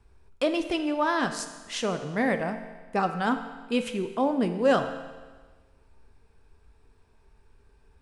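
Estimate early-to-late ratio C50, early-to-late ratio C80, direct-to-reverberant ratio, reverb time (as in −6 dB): 9.0 dB, 10.0 dB, 7.0 dB, 1.4 s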